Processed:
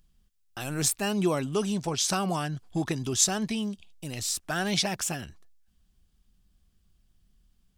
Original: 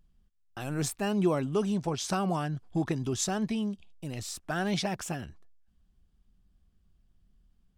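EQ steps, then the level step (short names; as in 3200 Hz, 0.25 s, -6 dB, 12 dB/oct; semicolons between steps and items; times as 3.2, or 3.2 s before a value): high shelf 2300 Hz +10.5 dB; 0.0 dB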